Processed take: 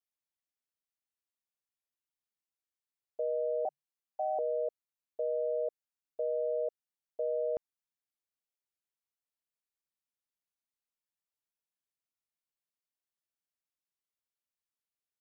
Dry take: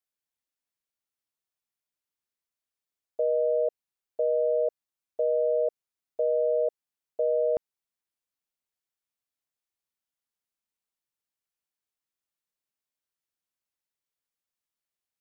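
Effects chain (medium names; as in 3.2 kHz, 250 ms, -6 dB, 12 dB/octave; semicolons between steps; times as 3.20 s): 3.65–4.39 s: frequency shift +140 Hz; trim -7.5 dB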